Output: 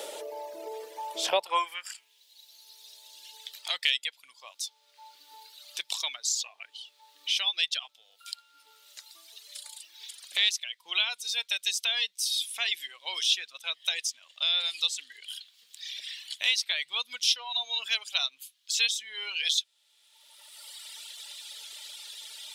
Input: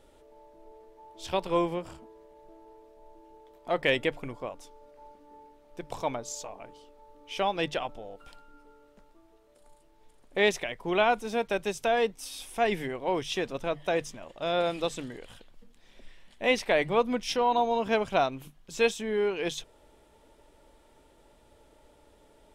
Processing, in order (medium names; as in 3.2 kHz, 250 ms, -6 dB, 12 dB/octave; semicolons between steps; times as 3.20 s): high-pass sweep 530 Hz -> 3.8 kHz, 1.30–2.25 s; reverb removal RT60 2 s; three bands compressed up and down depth 70%; trim +8.5 dB